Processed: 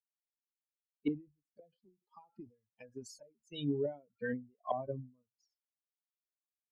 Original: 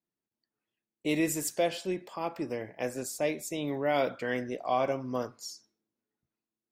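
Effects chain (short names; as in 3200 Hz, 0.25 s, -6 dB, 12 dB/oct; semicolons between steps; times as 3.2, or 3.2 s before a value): per-bin expansion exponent 3; treble ducked by the level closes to 330 Hz, closed at -33.5 dBFS; ending taper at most 190 dB/s; gain +6.5 dB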